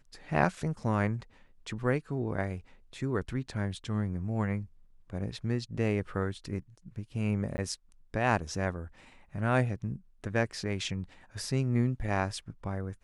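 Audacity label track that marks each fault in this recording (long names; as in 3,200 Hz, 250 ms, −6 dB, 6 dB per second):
7.570000	7.580000	drop-out 10 ms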